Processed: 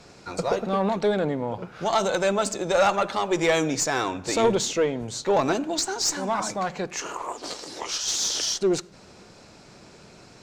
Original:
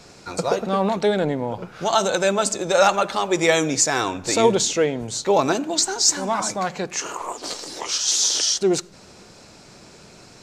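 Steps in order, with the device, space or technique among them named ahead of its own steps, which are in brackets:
tube preamp driven hard (tube saturation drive 10 dB, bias 0.25; high-shelf EQ 5,700 Hz −7 dB)
level −1.5 dB

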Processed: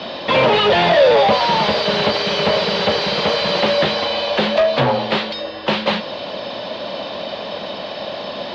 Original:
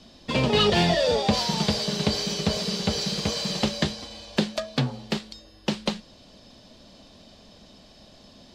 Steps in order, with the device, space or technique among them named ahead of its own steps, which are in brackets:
overdrive pedal into a guitar cabinet (mid-hump overdrive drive 35 dB, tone 3,100 Hz, clips at −8 dBFS; loudspeaker in its box 76–4,000 Hz, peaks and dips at 250 Hz −4 dB, 560 Hz +7 dB, 940 Hz +4 dB)

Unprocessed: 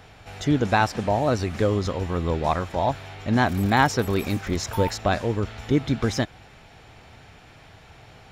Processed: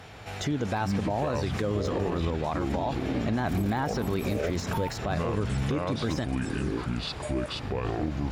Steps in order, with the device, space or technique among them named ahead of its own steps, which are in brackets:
delay with pitch and tempo change per echo 139 ms, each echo −7 semitones, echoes 3, each echo −6 dB
podcast mastering chain (high-pass filter 61 Hz 12 dB per octave; de-essing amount 80%; downward compressor 4 to 1, threshold −24 dBFS, peak gain reduction 9 dB; brickwall limiter −22 dBFS, peak gain reduction 8 dB; level +3 dB; MP3 96 kbit/s 44,100 Hz)

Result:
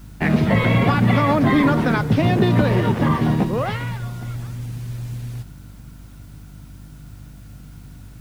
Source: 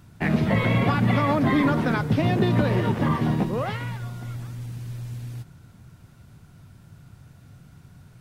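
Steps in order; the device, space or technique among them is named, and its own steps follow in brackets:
video cassette with head-switching buzz (hum with harmonics 50 Hz, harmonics 6, −46 dBFS −6 dB per octave; white noise bed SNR 37 dB)
level +4.5 dB

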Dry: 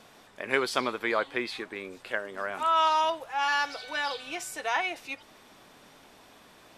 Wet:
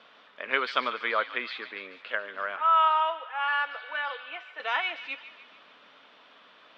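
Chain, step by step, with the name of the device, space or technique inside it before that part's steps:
0:02.56–0:04.60: three-way crossover with the lows and the highs turned down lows −20 dB, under 370 Hz, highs −22 dB, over 2,800 Hz
phone earpiece (loudspeaker in its box 340–3,900 Hz, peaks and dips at 360 Hz −9 dB, 780 Hz −6 dB, 1,300 Hz +5 dB, 3,100 Hz +5 dB)
delay with a high-pass on its return 145 ms, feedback 54%, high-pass 1,500 Hz, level −12 dB

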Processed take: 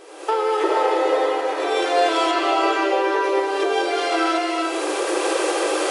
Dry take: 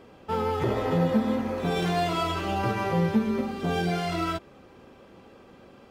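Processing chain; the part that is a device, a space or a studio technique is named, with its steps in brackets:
cheap recorder with automatic gain (white noise bed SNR 33 dB; camcorder AGC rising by 43 dB per second)
reverb whose tail is shaped and stops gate 480 ms rising, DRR 1 dB
0:02.31–0:03.24: high-shelf EQ 7,400 Hz −8.5 dB
brick-wall band-pass 300–11,000 Hz
level +6.5 dB

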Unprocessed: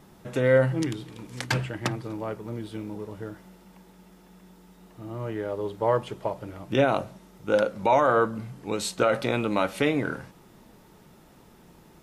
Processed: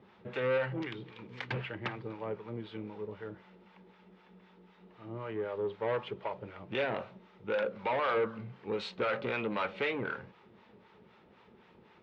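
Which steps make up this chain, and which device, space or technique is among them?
guitar amplifier with harmonic tremolo (two-band tremolo in antiphase 3.9 Hz, depth 70%, crossover 650 Hz; soft clipping −25.5 dBFS, distortion −9 dB; loudspeaker in its box 110–3,600 Hz, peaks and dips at 150 Hz −10 dB, 290 Hz −9 dB, 430 Hz +3 dB, 670 Hz −5 dB, 2,300 Hz +3 dB)

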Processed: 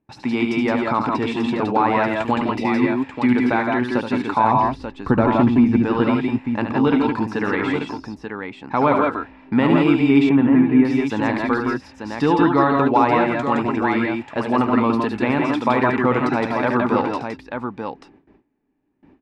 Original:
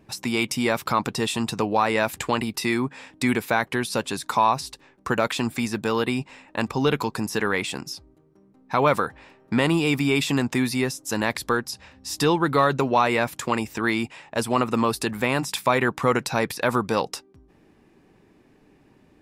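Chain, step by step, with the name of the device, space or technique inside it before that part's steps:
0:04.44–0:05.85: spectral tilt −3 dB per octave
multi-tap delay 73/90/165/168/887 ms −7.5/−16.5/−5.5/−5/−7 dB
noise gate with hold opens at −43 dBFS
inside a cardboard box (low-pass filter 2,500 Hz 12 dB per octave; hollow resonant body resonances 270/850 Hz, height 8 dB)
0:10.29–0:10.85: Bessel low-pass filter 1,700 Hz, order 8

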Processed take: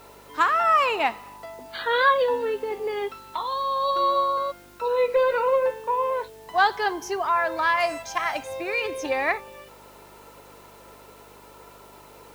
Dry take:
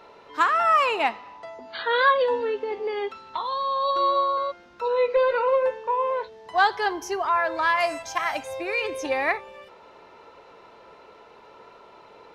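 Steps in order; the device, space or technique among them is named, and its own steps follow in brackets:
video cassette with head-switching buzz (hum with harmonics 50 Hz, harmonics 8, −57 dBFS −2 dB per octave; white noise bed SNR 31 dB)

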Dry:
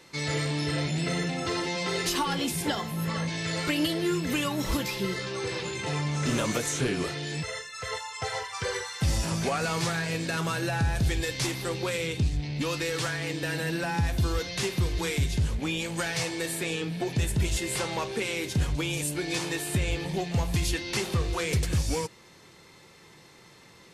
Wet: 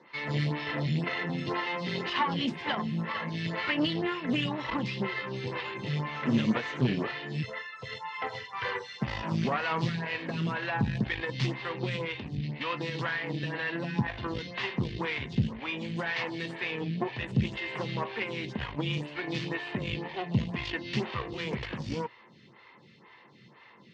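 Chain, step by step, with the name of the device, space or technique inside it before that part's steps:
vibe pedal into a guitar amplifier (phaser with staggered stages 2 Hz; tube saturation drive 24 dB, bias 0.8; loudspeaker in its box 100–4,300 Hz, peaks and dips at 130 Hz +9 dB, 220 Hz +10 dB, 1,000 Hz +8 dB, 1,900 Hz +7 dB, 2,900 Hz +6 dB)
level +2.5 dB

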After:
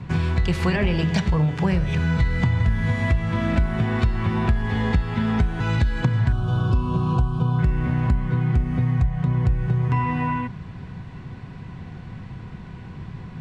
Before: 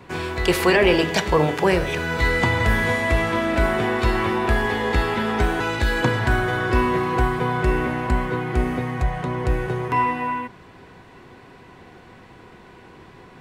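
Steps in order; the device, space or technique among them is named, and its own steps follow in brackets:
0:06.32–0:07.59: Chebyshev band-stop filter 1,300–2,900 Hz, order 2
jukebox (low-pass filter 7,100 Hz 12 dB per octave; low shelf with overshoot 240 Hz +13.5 dB, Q 1.5; downward compressor 5 to 1, threshold −18 dBFS, peak gain reduction 15.5 dB)

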